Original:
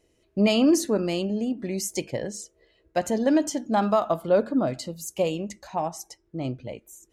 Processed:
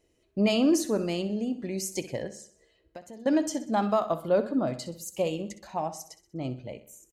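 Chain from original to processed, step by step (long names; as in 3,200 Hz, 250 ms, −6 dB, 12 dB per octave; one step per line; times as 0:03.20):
0:02.27–0:03.26: downward compressor 8 to 1, threshold −39 dBFS, peak gain reduction 19 dB
repeating echo 63 ms, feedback 48%, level −14 dB
level −3.5 dB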